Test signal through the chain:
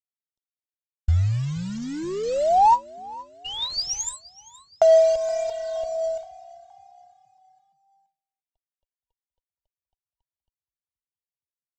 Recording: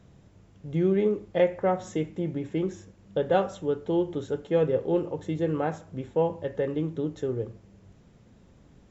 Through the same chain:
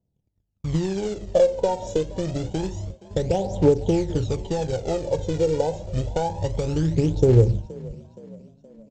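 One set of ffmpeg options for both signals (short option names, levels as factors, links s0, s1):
-filter_complex "[0:a]afftfilt=real='re*(1-between(b*sr/4096,970,2800))':imag='im*(1-between(b*sr/4096,970,2800))':win_size=4096:overlap=0.75,agate=range=0.0112:threshold=0.00398:ratio=16:detection=peak,acrossover=split=1000[s0][s1];[s0]acontrast=53[s2];[s2][s1]amix=inputs=2:normalize=0,equalizer=f=1300:t=o:w=1.3:g=8,aresample=16000,acrusher=bits=5:mode=log:mix=0:aa=0.000001,aresample=44100,acompressor=threshold=0.0794:ratio=16,aphaser=in_gain=1:out_gain=1:delay=2.2:decay=0.64:speed=0.27:type=triangular,asubboost=boost=6:cutoff=89,asplit=5[s3][s4][s5][s6][s7];[s4]adelay=471,afreqshift=34,volume=0.0891[s8];[s5]adelay=942,afreqshift=68,volume=0.0447[s9];[s6]adelay=1413,afreqshift=102,volume=0.0224[s10];[s7]adelay=1884,afreqshift=136,volume=0.0111[s11];[s3][s8][s9][s10][s11]amix=inputs=5:normalize=0,volume=1.5"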